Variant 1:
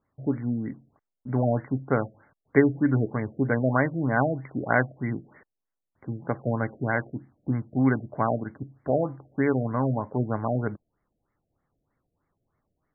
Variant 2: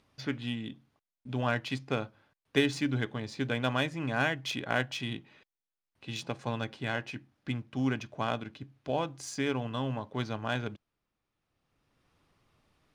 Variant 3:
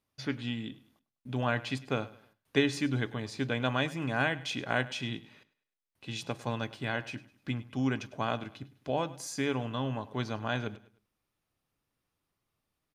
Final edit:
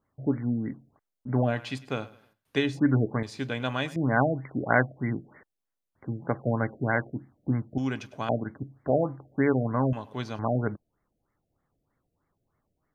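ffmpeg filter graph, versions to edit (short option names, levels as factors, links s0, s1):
-filter_complex "[2:a]asplit=4[s0][s1][s2][s3];[0:a]asplit=5[s4][s5][s6][s7][s8];[s4]atrim=end=1.58[s9];[s0]atrim=start=1.42:end=2.8[s10];[s5]atrim=start=2.64:end=3.232[s11];[s1]atrim=start=3.228:end=3.962[s12];[s6]atrim=start=3.958:end=7.782[s13];[s2]atrim=start=7.778:end=8.292[s14];[s7]atrim=start=8.288:end=9.932[s15];[s3]atrim=start=9.928:end=10.392[s16];[s8]atrim=start=10.388[s17];[s9][s10]acrossfade=d=0.16:c1=tri:c2=tri[s18];[s18][s11]acrossfade=d=0.16:c1=tri:c2=tri[s19];[s19][s12]acrossfade=d=0.004:c1=hsin:c2=hsin[s20];[s20][s13]acrossfade=d=0.004:c1=hsin:c2=hsin[s21];[s21][s14]acrossfade=d=0.004:c1=hsin:c2=hsin[s22];[s22][s15]acrossfade=d=0.004:c1=hsin:c2=hsin[s23];[s23][s16]acrossfade=d=0.004:c1=hsin:c2=hsin[s24];[s24][s17]acrossfade=d=0.004:c1=hsin:c2=hsin"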